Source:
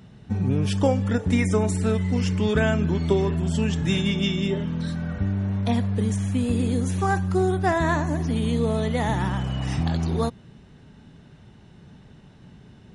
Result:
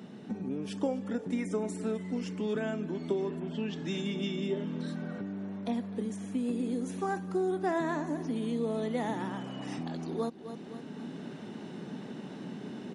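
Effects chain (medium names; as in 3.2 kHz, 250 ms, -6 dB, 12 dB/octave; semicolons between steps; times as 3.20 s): bass shelf 480 Hz +11 dB; on a send: feedback delay 257 ms, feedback 37%, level -20.5 dB; on the sum: level rider gain up to 6.5 dB; 3.39–4.06 s: resonant low-pass 2.1 kHz -> 7.9 kHz, resonance Q 1.6; compression 4:1, threshold -27 dBFS, peak gain reduction 16.5 dB; high-pass 230 Hz 24 dB/octave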